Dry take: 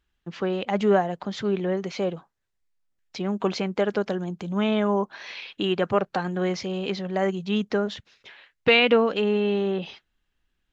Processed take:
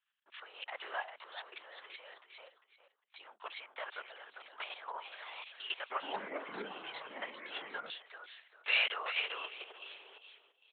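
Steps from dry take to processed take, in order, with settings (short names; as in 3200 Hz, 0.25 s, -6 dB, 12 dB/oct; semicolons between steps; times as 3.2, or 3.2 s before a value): feedback echo 0.395 s, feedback 23%, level -6.5 dB; level quantiser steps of 11 dB; LPC vocoder at 8 kHz whisper; Bessel high-pass 1300 Hz, order 4; 5.79–7.9 echoes that change speed 0.109 s, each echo -6 st, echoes 3; gain -3 dB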